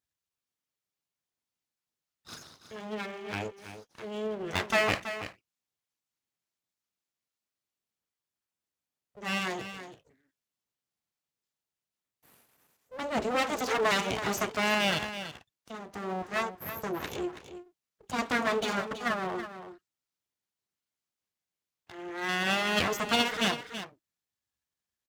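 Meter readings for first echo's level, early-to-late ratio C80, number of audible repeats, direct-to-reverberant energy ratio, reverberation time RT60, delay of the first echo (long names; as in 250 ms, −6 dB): −11.0 dB, no reverb audible, 1, no reverb audible, no reverb audible, 327 ms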